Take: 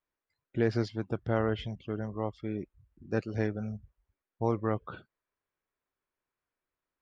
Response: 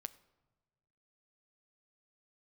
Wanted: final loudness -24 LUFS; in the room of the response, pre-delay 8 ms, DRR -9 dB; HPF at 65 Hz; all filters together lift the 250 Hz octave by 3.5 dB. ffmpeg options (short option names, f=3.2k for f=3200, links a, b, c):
-filter_complex "[0:a]highpass=65,equalizer=f=250:t=o:g=4.5,asplit=2[a][b];[1:a]atrim=start_sample=2205,adelay=8[c];[b][c]afir=irnorm=-1:irlink=0,volume=13dB[d];[a][d]amix=inputs=2:normalize=0,volume=-1.5dB"